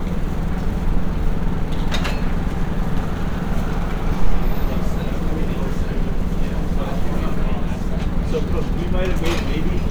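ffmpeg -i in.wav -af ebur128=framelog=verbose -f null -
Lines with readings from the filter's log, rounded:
Integrated loudness:
  I:         -23.8 LUFS
  Threshold: -33.8 LUFS
Loudness range:
  LRA:         0.9 LU
  Threshold: -44.0 LUFS
  LRA low:   -24.2 LUFS
  LRA high:  -23.2 LUFS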